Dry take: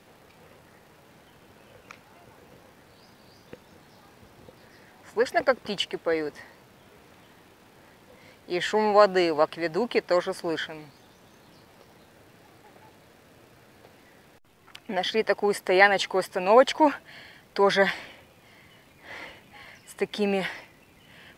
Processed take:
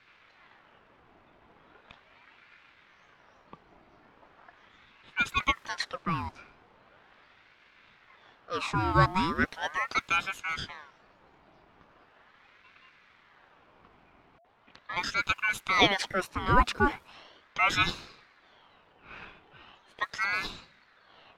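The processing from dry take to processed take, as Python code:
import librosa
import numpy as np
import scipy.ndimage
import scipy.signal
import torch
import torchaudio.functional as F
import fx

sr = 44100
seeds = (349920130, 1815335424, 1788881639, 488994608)

y = fx.env_lowpass(x, sr, base_hz=2300.0, full_db=-22.5)
y = fx.ring_lfo(y, sr, carrier_hz=1200.0, swing_pct=60, hz=0.39)
y = F.gain(torch.from_numpy(y), -2.0).numpy()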